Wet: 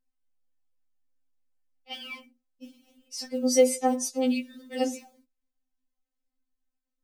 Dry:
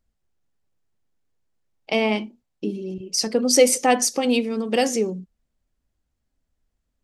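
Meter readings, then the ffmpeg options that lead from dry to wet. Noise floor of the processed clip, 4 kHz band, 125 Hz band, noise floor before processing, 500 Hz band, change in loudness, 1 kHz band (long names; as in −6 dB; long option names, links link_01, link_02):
−85 dBFS, −10.5 dB, can't be measured, −77 dBFS, −6.5 dB, −6.0 dB, −8.5 dB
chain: -af "acrusher=bits=8:mode=log:mix=0:aa=0.000001,afftfilt=real='re*3.46*eq(mod(b,12),0)':imag='im*3.46*eq(mod(b,12),0)':win_size=2048:overlap=0.75,volume=-8.5dB"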